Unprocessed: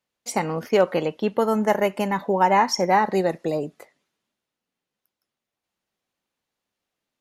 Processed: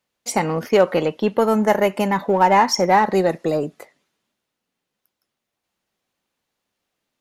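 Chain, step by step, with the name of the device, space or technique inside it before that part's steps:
parallel distortion (in parallel at −10 dB: hard clipping −23.5 dBFS, distortion −5 dB)
on the sum: level +2.5 dB

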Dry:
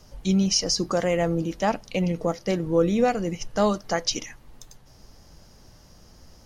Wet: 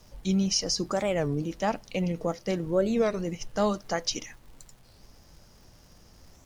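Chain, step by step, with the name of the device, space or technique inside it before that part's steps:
warped LP (wow of a warped record 33 1/3 rpm, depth 250 cents; surface crackle 140 per second −44 dBFS; pink noise bed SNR 38 dB)
level −4 dB

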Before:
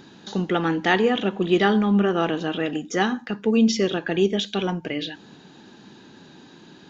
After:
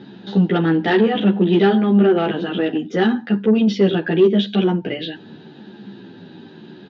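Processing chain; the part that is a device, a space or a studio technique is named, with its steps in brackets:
barber-pole flanger into a guitar amplifier (barber-pole flanger 11.4 ms −0.87 Hz; soft clipping −19.5 dBFS, distortion −14 dB; loudspeaker in its box 100–3,800 Hz, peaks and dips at 110 Hz +6 dB, 200 Hz +7 dB, 380 Hz +5 dB, 1,100 Hz −8 dB, 2,300 Hz −5 dB)
level +8 dB

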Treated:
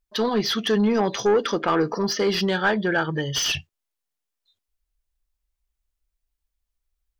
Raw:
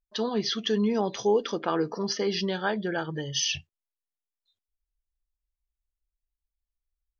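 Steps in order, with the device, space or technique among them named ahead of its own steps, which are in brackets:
saturation between pre-emphasis and de-emphasis (high-shelf EQ 2,500 Hz +9.5 dB; soft clipping −20.5 dBFS, distortion −12 dB; high-shelf EQ 2,500 Hz −9.5 dB)
dynamic equaliser 1,500 Hz, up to +5 dB, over −44 dBFS, Q 1.2
level +7 dB

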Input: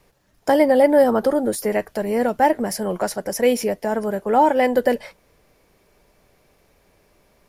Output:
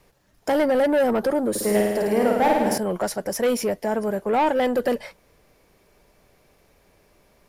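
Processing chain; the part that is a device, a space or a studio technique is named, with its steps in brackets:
saturation between pre-emphasis and de-emphasis (high-shelf EQ 6,400 Hz +9.5 dB; soft clipping −15.5 dBFS, distortion −11 dB; high-shelf EQ 6,400 Hz −9.5 dB)
0:01.50–0:02.78: flutter between parallel walls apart 9.1 metres, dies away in 1.2 s

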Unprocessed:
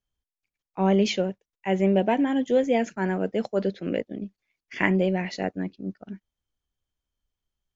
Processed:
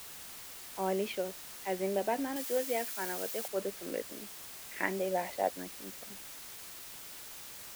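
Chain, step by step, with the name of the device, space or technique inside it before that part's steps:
0:05.11–0:05.51: gain on a spectral selection 480–1,100 Hz +9 dB
wax cylinder (band-pass filter 360–2,400 Hz; tape wow and flutter; white noise bed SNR 10 dB)
0:02.36–0:03.48: spectral tilt +2 dB per octave
level −7.5 dB

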